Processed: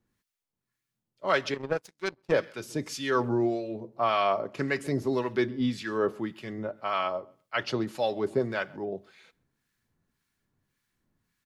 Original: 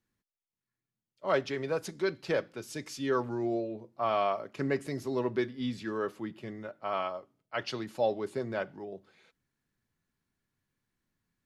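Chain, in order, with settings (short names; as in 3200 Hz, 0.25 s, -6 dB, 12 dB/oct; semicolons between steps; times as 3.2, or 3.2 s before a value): feedback echo 0.132 s, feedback 18%, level -24 dB; harmonic tremolo 1.8 Hz, depth 70%, crossover 1100 Hz; 1.54–2.32 power-law curve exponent 2; gain +8.5 dB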